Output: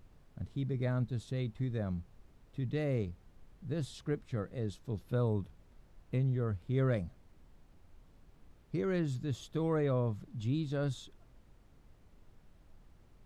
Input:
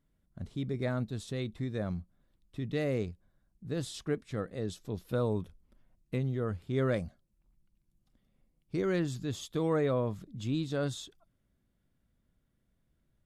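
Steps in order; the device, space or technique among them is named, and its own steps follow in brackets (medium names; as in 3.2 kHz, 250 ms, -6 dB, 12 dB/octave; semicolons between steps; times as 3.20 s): car interior (peaking EQ 120 Hz +6 dB 0.86 oct; treble shelf 4.5 kHz -6 dB; brown noise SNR 21 dB); trim -3.5 dB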